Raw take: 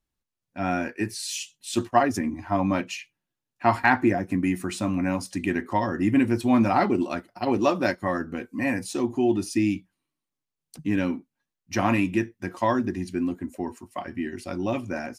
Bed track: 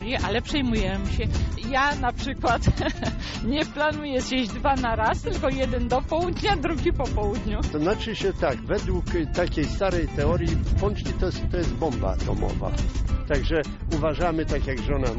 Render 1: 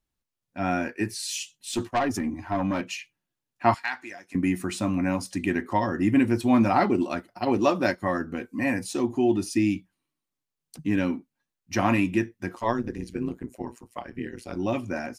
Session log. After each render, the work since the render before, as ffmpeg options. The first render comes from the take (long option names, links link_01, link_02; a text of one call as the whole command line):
ffmpeg -i in.wav -filter_complex "[0:a]asettb=1/sr,asplit=3[link_01][link_02][link_03];[link_01]atrim=end=1.574[link_04];[link_02]atrim=start=1.57:end=2.91,asetpts=PTS-STARTPTS,afade=type=in:duration=0.004:curve=qsin,afade=type=out:start_time=1.336:duration=0.004:curve=qsin,aeval=exprs='(tanh(8.91*val(0)+0.1)-tanh(0.1))/8.91':channel_layout=same[link_05];[link_03]atrim=start=2.906[link_06];[link_04][link_05]acrossfade=duration=0.004:curve1=hsin:curve2=qsin[link_07];[link_07][link_06]acrossfade=duration=0.004:curve1=qsin:curve2=hsin,asettb=1/sr,asplit=3[link_08][link_09][link_10];[link_08]atrim=end=3.744[link_11];[link_09]atrim=start=3.74:end=4.35,asetpts=PTS-STARTPTS,afade=type=in:duration=0.004:curve=qsin,afade=type=out:start_time=0.606:duration=0.004:curve=qsin,bandpass=frequency=5300:width_type=q:width=0.85[link_12];[link_10]atrim=start=4.346[link_13];[link_11][link_12]acrossfade=duration=0.004:curve1=hsin:curve2=qsin[link_14];[link_14][link_13]acrossfade=duration=0.004:curve1=qsin:curve2=hsin,asettb=1/sr,asplit=3[link_15][link_16][link_17];[link_15]atrim=end=12.554[link_18];[link_16]atrim=start=12.55:end=14.57,asetpts=PTS-STARTPTS,afade=type=in:duration=0.004:curve=qsin,afade=type=out:start_time=2.016:duration=0.004:curve=qsin,tremolo=f=120:d=0.857[link_19];[link_17]atrim=start=14.566[link_20];[link_18][link_19]acrossfade=duration=0.004:curve1=hsin:curve2=qsin[link_21];[link_21][link_20]acrossfade=duration=0.004:curve1=qsin:curve2=hsin" out.wav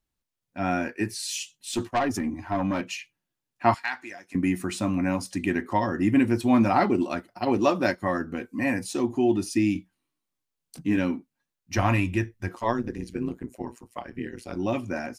ffmpeg -i in.wav -filter_complex "[0:a]asettb=1/sr,asplit=3[link_01][link_02][link_03];[link_01]atrim=end=9.734[link_04];[link_02]atrim=start=9.73:end=10.97,asetpts=PTS-STARTPTS,afade=type=in:duration=0.004:curve=qsin,afade=type=out:start_time=1.236:duration=0.004:curve=qsin,asplit=2[link_05][link_06];[link_06]adelay=23,volume=-7dB[link_07];[link_05][link_07]amix=inputs=2:normalize=0,atrim=end_sample=54684[link_08];[link_03]atrim=start=10.966[link_09];[link_04][link_08]acrossfade=duration=0.004:curve1=hsin:curve2=qsin[link_10];[link_10][link_09]acrossfade=duration=0.004:curve1=qsin:curve2=hsin,asplit=3[link_11][link_12][link_13];[link_11]afade=type=out:start_time=11.76:duration=0.02[link_14];[link_12]asubboost=boost=9:cutoff=70,afade=type=in:start_time=11.76:duration=0.02,afade=type=out:start_time=12.48:duration=0.02[link_15];[link_13]afade=type=in:start_time=12.48:duration=0.02[link_16];[link_14][link_15][link_16]amix=inputs=3:normalize=0" out.wav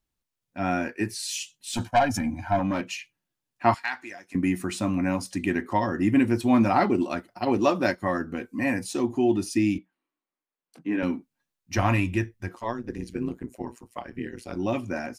ffmpeg -i in.wav -filter_complex "[0:a]asettb=1/sr,asplit=3[link_01][link_02][link_03];[link_01]atrim=end=1.744[link_04];[link_02]atrim=start=1.74:end=2.59,asetpts=PTS-STARTPTS,afade=type=in:duration=0.004:curve=qsin,afade=type=out:start_time=0.846:duration=0.004:curve=qsin,aecho=1:1:1.3:0.99,atrim=end_sample=37485[link_05];[link_03]atrim=start=2.586[link_06];[link_04][link_05]acrossfade=duration=0.004:curve1=hsin:curve2=qsin[link_07];[link_07][link_06]acrossfade=duration=0.004:curve1=qsin:curve2=hsin,asettb=1/sr,asplit=3[link_08][link_09][link_10];[link_08]atrim=end=9.784[link_11];[link_09]atrim=start=9.78:end=11.03,asetpts=PTS-STARTPTS,afade=type=in:duration=0.004:curve=qsin,afade=type=out:start_time=1.246:duration=0.004:curve=qsin,acrossover=split=230 2700:gain=0.0891 1 0.178[link_12][link_13][link_14];[link_12][link_13][link_14]amix=inputs=3:normalize=0[link_15];[link_10]atrim=start=11.026[link_16];[link_11][link_15]acrossfade=duration=0.004:curve1=hsin:curve2=qsin[link_17];[link_17][link_16]acrossfade=duration=0.004:curve1=qsin:curve2=hsin,asplit=2[link_18][link_19];[link_18]atrim=end=12.88,asetpts=PTS-STARTPTS,afade=type=out:start_time=12.18:duration=0.7:silence=0.398107[link_20];[link_19]atrim=start=12.88,asetpts=PTS-STARTPTS,afade=type=in:duration=0.004:curve=hsin:silence=0.398107[link_21];[link_20][link_21]concat=n=2:v=0:a=1" out.wav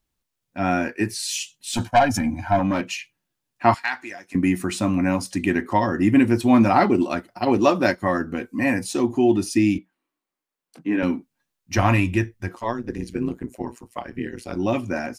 ffmpeg -i in.wav -af "volume=4.5dB,alimiter=limit=-3dB:level=0:latency=1" out.wav